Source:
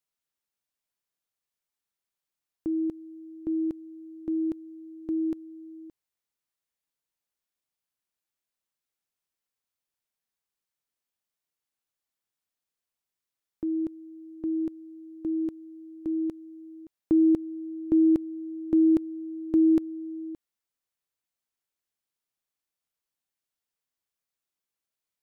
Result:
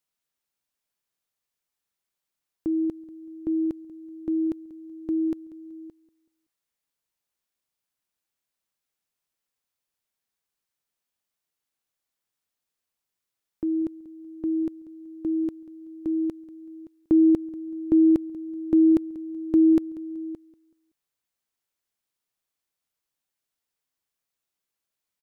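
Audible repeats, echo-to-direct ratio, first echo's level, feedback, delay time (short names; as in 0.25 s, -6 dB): 2, -18.5 dB, -19.0 dB, 32%, 0.189 s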